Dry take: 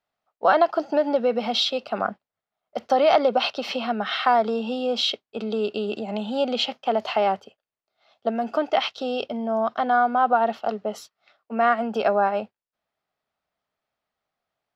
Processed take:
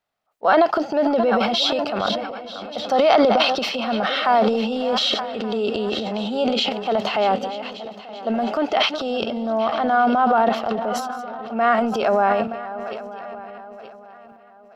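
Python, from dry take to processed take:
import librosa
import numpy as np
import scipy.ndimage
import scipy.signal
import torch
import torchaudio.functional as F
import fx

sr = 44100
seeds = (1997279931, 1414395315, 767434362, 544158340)

y = fx.reverse_delay_fb(x, sr, ms=462, feedback_pct=59, wet_db=-13.5)
y = y + 10.0 ** (-20.5 / 20.0) * np.pad(y, (int(1174 * sr / 1000.0), 0))[:len(y)]
y = fx.transient(y, sr, attack_db=-4, sustain_db=9)
y = y * librosa.db_to_amplitude(2.5)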